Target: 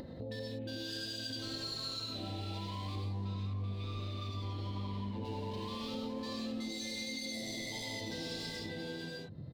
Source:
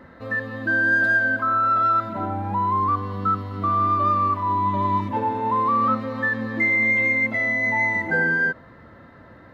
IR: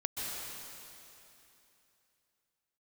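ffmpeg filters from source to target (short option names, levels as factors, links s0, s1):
-filter_complex "[0:a]aecho=1:1:579:0.631,afwtdn=0.0316,asoftclip=type=hard:threshold=0.075,firequalizer=gain_entry='entry(510,0);entry(1300,-20);entry(4100,6);entry(6000,-4)':delay=0.05:min_phase=1[s0];[1:a]atrim=start_sample=2205,afade=t=out:st=0.38:d=0.01,atrim=end_sample=17199,asetrate=74970,aresample=44100[s1];[s0][s1]afir=irnorm=-1:irlink=0,acompressor=mode=upward:threshold=0.0112:ratio=2.5,asettb=1/sr,asplit=3[s2][s3][s4];[s2]atrim=end=3.254[s5];[s3]atrim=start=3.25:end=5.25,asetpts=PTS-STARTPTS,afade=t=in:d=0.004:c=qsin,afade=t=out:st=1.996:d=0.004:c=qsin,bass=f=250:g=4,treble=f=4000:g=-10[s6];[s4]atrim=start=5.246[s7];[s5][s6]acrossfade=d=0.004:c1=hsin:c2=qsin[s8];[s8][s7]acrossfade=d=0.004:c1=qsin:c2=hsin,acompressor=threshold=0.00251:ratio=3,volume=2.51"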